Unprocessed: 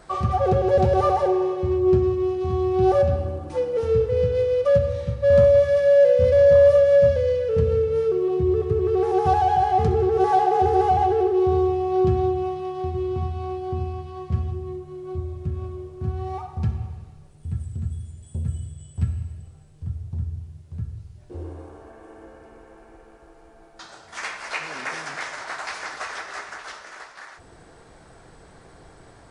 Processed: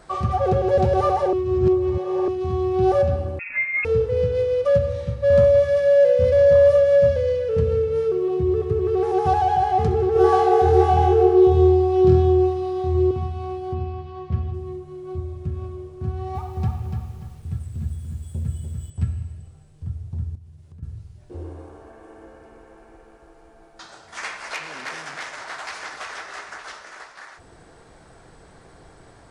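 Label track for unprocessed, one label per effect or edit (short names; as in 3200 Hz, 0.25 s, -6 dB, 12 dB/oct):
1.330000	2.280000	reverse
3.390000	3.850000	inverted band carrier 2600 Hz
10.130000	13.110000	flutter echo walls apart 4.2 m, dies away in 0.53 s
13.740000	14.540000	LPF 4400 Hz
16.060000	18.900000	lo-fi delay 0.292 s, feedback 35%, word length 9-bit, level -5 dB
20.350000	20.830000	compressor, threshold -41 dBFS
24.540000	26.520000	core saturation saturates under 3600 Hz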